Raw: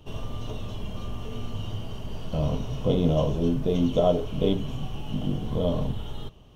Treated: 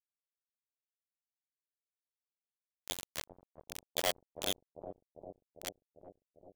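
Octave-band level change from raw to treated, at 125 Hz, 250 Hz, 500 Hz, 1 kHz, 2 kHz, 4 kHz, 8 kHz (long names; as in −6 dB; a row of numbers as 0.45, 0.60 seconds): −33.0 dB, −28.0 dB, −19.0 dB, −11.5 dB, +0.5 dB, −3.0 dB, can't be measured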